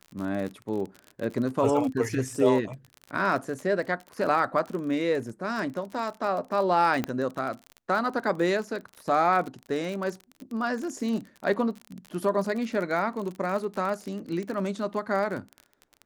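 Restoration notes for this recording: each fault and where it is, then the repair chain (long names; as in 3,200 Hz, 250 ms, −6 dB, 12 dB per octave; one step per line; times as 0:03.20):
surface crackle 37 per second −32 dBFS
0:07.04: click −14 dBFS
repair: click removal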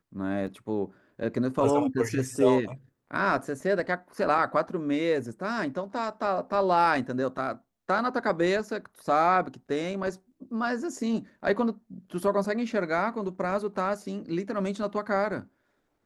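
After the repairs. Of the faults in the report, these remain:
none of them is left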